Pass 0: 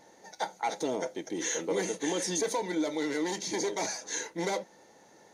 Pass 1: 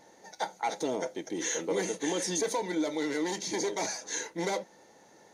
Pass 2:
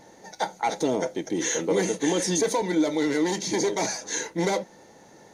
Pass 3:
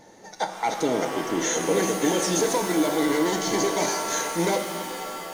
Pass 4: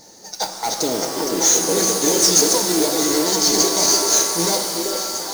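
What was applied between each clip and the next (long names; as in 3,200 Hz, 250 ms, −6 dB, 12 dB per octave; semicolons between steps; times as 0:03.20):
no processing that can be heard
low-shelf EQ 200 Hz +9.5 dB; level +5 dB
reverb with rising layers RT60 2.7 s, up +7 semitones, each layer −2 dB, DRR 6 dB
high shelf with overshoot 3,600 Hz +9 dB, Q 3; echo through a band-pass that steps 388 ms, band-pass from 420 Hz, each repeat 1.4 octaves, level −1 dB; noise that follows the level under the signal 12 dB; level +1 dB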